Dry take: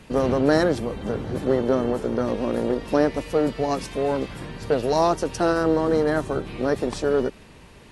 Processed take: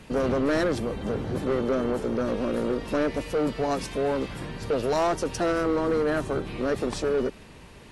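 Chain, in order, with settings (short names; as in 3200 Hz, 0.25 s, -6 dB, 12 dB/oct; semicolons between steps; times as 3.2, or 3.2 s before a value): soft clip -19 dBFS, distortion -10 dB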